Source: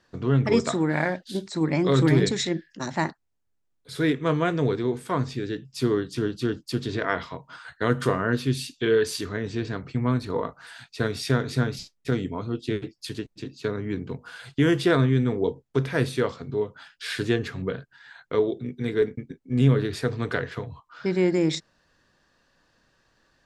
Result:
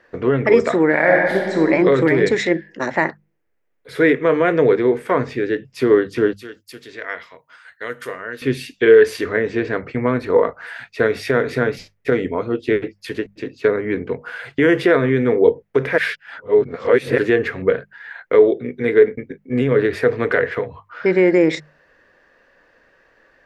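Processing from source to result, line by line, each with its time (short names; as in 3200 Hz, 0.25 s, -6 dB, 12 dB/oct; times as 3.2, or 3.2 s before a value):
0.99–1.62 reverb throw, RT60 1.6 s, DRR -0.5 dB
6.33–8.42 pre-emphasis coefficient 0.9
15.98–17.18 reverse
whole clip: notches 50/100/150/200 Hz; limiter -14.5 dBFS; graphic EQ 125/500/2000/4000/8000 Hz -5/+11/+12/-6/-8 dB; gain +4 dB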